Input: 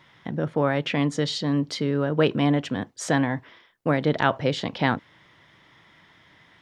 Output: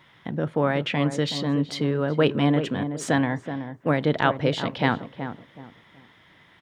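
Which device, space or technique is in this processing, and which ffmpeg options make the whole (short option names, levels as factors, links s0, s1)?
exciter from parts: -filter_complex "[0:a]asplit=2[s0][s1];[s1]adelay=375,lowpass=f=1100:p=1,volume=0.376,asplit=2[s2][s3];[s3]adelay=375,lowpass=f=1100:p=1,volume=0.3,asplit=2[s4][s5];[s5]adelay=375,lowpass=f=1100:p=1,volume=0.3,asplit=2[s6][s7];[s7]adelay=375,lowpass=f=1100:p=1,volume=0.3[s8];[s0][s2][s4][s6][s8]amix=inputs=5:normalize=0,asplit=2[s9][s10];[s10]highpass=4900,asoftclip=type=tanh:threshold=0.0355,highpass=f=3200:w=0.5412,highpass=f=3200:w=1.3066,volume=0.501[s11];[s9][s11]amix=inputs=2:normalize=0"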